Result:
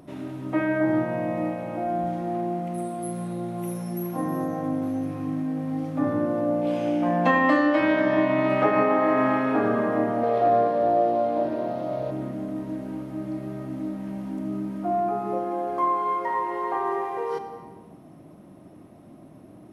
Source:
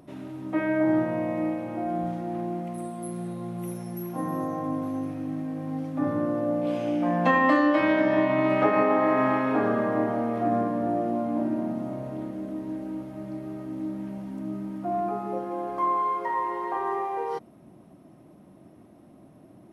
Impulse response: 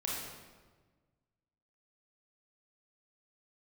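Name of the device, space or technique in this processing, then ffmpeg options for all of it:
compressed reverb return: -filter_complex "[0:a]asplit=2[s0][s1];[1:a]atrim=start_sample=2205[s2];[s1][s2]afir=irnorm=-1:irlink=0,acompressor=threshold=0.0501:ratio=6,volume=0.531[s3];[s0][s3]amix=inputs=2:normalize=0,asettb=1/sr,asplit=3[s4][s5][s6];[s4]atrim=end=10.234[s7];[s5]atrim=start=10.23:end=12.11,asetpts=PTS-STARTPTS,afade=t=in:d=0.004:c=qsin,afade=t=out:st=1.876:d=0.004:c=qsin,equalizer=f=250:t=o:w=1:g=-11,equalizer=f=500:t=o:w=1:g=10,equalizer=f=4000:t=o:w=1:g=10,equalizer=f=8000:t=o:w=1:g=-6[s8];[s6]atrim=start=12.106[s9];[s7][s8]acrossfade=d=0.004:c1=hsin:c2=qsin[s10];[s10][s9]acrossfade=d=0.004:c1=qsin:c2=hsin"

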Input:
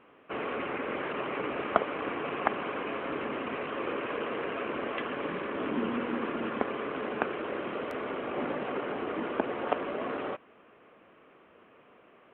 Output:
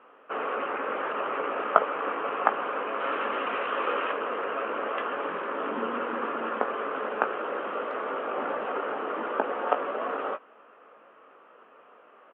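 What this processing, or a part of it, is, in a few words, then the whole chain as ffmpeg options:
phone earpiece: -filter_complex "[0:a]highpass=340,equalizer=f=340:t=q:w=4:g=-4,equalizer=f=520:t=q:w=4:g=3,equalizer=f=870:t=q:w=4:g=3,equalizer=f=1300:t=q:w=4:g=7,equalizer=f=2200:t=q:w=4:g=-6,lowpass=f=3100:w=0.5412,lowpass=f=3100:w=1.3066,asettb=1/sr,asplit=3[s0][s1][s2];[s0]atrim=end=3.004[s3];[s1]atrim=start=3:end=4.12,asetpts=PTS-STARTPTS,afade=t=in:d=0.004:c=qsin,afade=t=out:st=1.116:d=0.004:c=qsin,highshelf=f=2100:g=10[s4];[s2]atrim=start=4.116[s5];[s3][s4]acrossfade=d=0.004:c1=hsin:c2=qsin[s6];[s6][s5]acrossfade=d=0.004:c1=qsin:c2=hsin,asplit=2[s7][s8];[s8]adelay=18,volume=0.376[s9];[s7][s9]amix=inputs=2:normalize=0,volume=1.26"

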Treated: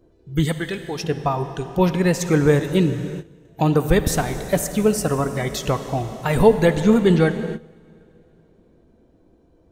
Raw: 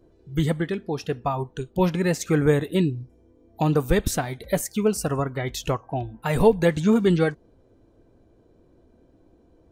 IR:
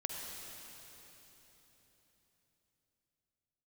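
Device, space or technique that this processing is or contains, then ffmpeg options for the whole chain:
keyed gated reverb: -filter_complex "[0:a]asplit=3[s0][s1][s2];[1:a]atrim=start_sample=2205[s3];[s1][s3]afir=irnorm=-1:irlink=0[s4];[s2]apad=whole_len=428431[s5];[s4][s5]sidechaingate=range=0.141:threshold=0.00251:ratio=16:detection=peak,volume=0.596[s6];[s0][s6]amix=inputs=2:normalize=0,asettb=1/sr,asplit=3[s7][s8][s9];[s7]atrim=end=0.454[s10];[s8]atrim=start=0.45:end=1.04,asetpts=PTS-STARTPTS,afade=t=in:d=0.004:c=qsin,afade=t=out:st=0.586:d=0.004:c=qsin,tiltshelf=f=1400:g=-5.5[s11];[s9]atrim=start=1.036[s12];[s10][s11]acrossfade=d=0.004:c1=hsin:c2=qsin[s13];[s13][s12]acrossfade=d=0.004:c1=qsin:c2=hsin"

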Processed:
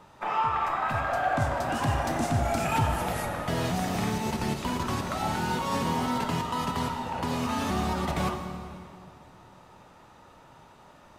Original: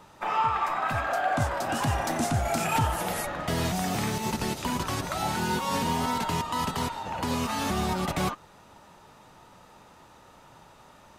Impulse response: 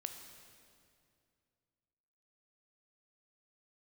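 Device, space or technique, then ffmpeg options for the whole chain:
swimming-pool hall: -filter_complex "[1:a]atrim=start_sample=2205[s0];[0:a][s0]afir=irnorm=-1:irlink=0,highshelf=f=4000:g=-6,volume=1.33"

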